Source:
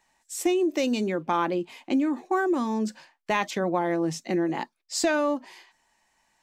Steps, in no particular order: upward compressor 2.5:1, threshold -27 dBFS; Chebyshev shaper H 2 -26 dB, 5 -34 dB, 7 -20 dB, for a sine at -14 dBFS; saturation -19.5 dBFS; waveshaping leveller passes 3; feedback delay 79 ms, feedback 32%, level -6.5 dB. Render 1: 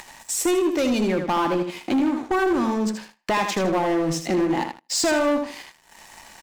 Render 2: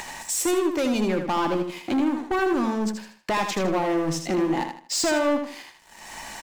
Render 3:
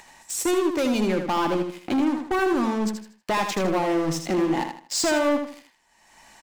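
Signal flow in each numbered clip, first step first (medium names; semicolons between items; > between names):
saturation > upward compressor > feedback delay > Chebyshev shaper > waveshaping leveller; Chebyshev shaper > upward compressor > saturation > waveshaping leveller > feedback delay; Chebyshev shaper > waveshaping leveller > saturation > upward compressor > feedback delay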